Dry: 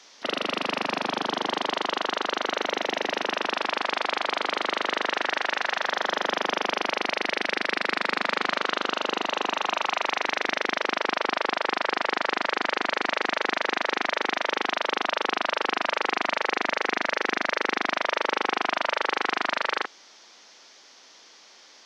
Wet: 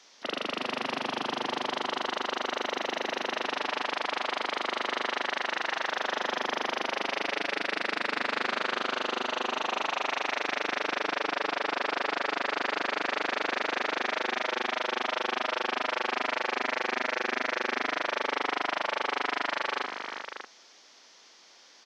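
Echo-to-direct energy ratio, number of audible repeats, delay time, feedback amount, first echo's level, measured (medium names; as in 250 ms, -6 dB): -5.0 dB, 3, 88 ms, no regular repeats, -13.5 dB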